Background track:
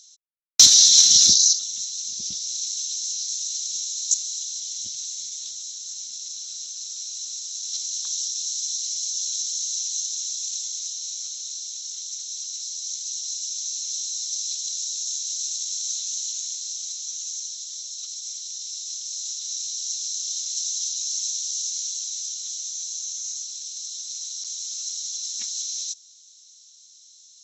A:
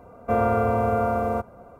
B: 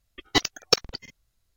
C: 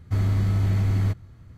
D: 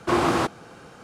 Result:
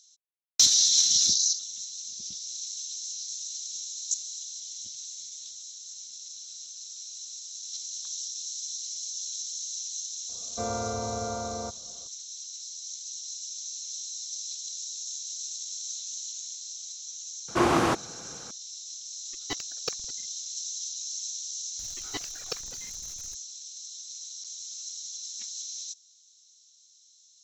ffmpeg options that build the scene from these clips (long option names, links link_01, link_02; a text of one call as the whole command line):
ffmpeg -i bed.wav -i cue0.wav -i cue1.wav -i cue2.wav -i cue3.wav -filter_complex "[2:a]asplit=2[link_01][link_02];[0:a]volume=-8dB[link_03];[1:a]aemphasis=mode=reproduction:type=50kf[link_04];[link_02]aeval=exprs='val(0)+0.5*0.0376*sgn(val(0))':channel_layout=same[link_05];[link_04]atrim=end=1.79,asetpts=PTS-STARTPTS,volume=-10.5dB,afade=type=in:duration=0.004:curve=hsin,afade=type=out:start_time=1.786:duration=0.004:curve=hsin,adelay=10290[link_06];[4:a]atrim=end=1.03,asetpts=PTS-STARTPTS,volume=-1.5dB,afade=type=in:duration=0.004:curve=hsin,afade=type=out:start_time=1.026:duration=0.004:curve=hsin,adelay=770868S[link_07];[link_01]atrim=end=1.56,asetpts=PTS-STARTPTS,volume=-13.5dB,afade=type=in:duration=0.004:curve=hsin,afade=type=out:start_time=1.556:duration=0.004:curve=hsin,adelay=19150[link_08];[link_05]atrim=end=1.56,asetpts=PTS-STARTPTS,volume=-16dB,afade=type=in:duration=0.004:curve=hsin,afade=type=out:start_time=1.556:duration=0.004:curve=hsin,adelay=21790[link_09];[link_03][link_06][link_07][link_08][link_09]amix=inputs=5:normalize=0" out.wav